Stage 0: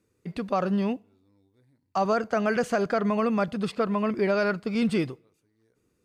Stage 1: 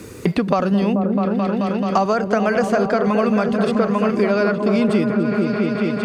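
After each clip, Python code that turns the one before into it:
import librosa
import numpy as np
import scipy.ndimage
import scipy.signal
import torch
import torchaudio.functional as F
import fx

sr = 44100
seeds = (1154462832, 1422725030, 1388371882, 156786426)

y = fx.echo_opening(x, sr, ms=217, hz=400, octaves=1, feedback_pct=70, wet_db=-3)
y = fx.band_squash(y, sr, depth_pct=100)
y = F.gain(torch.from_numpy(y), 5.5).numpy()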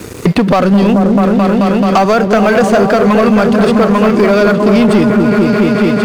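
y = fx.leveller(x, sr, passes=3)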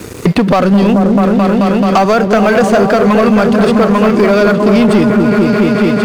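y = x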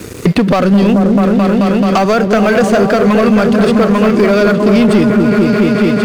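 y = fx.peak_eq(x, sr, hz=890.0, db=-4.0, octaves=0.86)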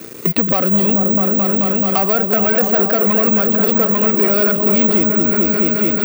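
y = scipy.signal.sosfilt(scipy.signal.butter(2, 170.0, 'highpass', fs=sr, output='sos'), x)
y = (np.kron(y[::2], np.eye(2)[0]) * 2)[:len(y)]
y = F.gain(torch.from_numpy(y), -7.0).numpy()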